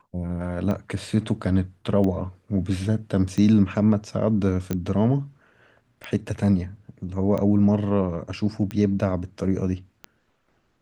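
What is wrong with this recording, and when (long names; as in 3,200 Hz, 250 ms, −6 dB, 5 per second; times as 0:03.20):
scratch tick 45 rpm −17 dBFS
0:04.73: click −14 dBFS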